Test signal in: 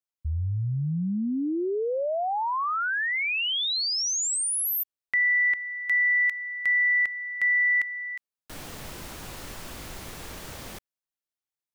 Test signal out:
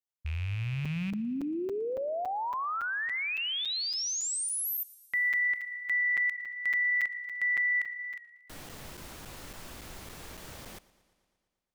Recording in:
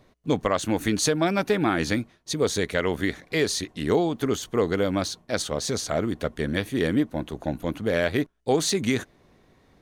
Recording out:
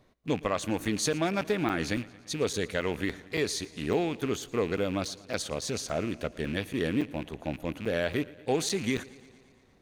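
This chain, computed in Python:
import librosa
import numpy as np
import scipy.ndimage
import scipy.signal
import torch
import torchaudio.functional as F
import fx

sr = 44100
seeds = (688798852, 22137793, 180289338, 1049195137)

y = fx.rattle_buzz(x, sr, strikes_db=-35.0, level_db=-26.0)
y = fx.buffer_crackle(y, sr, first_s=0.85, period_s=0.28, block=256, kind='zero')
y = fx.echo_warbled(y, sr, ms=115, feedback_pct=67, rate_hz=2.8, cents=56, wet_db=-21)
y = y * librosa.db_to_amplitude(-5.5)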